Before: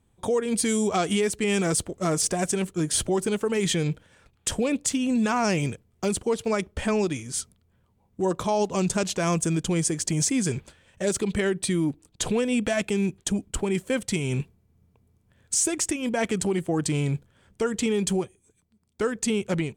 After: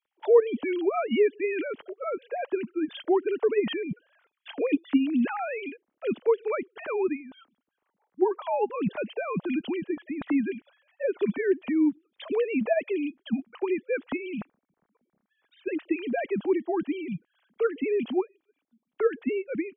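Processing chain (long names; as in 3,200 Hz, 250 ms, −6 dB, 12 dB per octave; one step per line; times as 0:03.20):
three sine waves on the formant tracks
level −2 dB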